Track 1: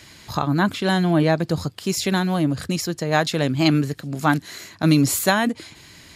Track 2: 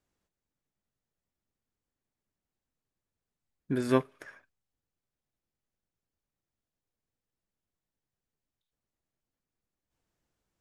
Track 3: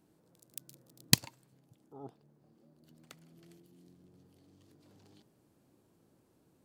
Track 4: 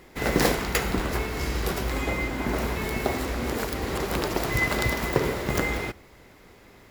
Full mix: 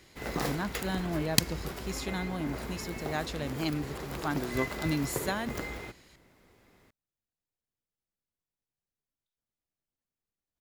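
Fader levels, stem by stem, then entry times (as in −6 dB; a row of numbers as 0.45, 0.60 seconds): −14.5, −6.5, −0.5, −11.5 decibels; 0.00, 0.65, 0.25, 0.00 seconds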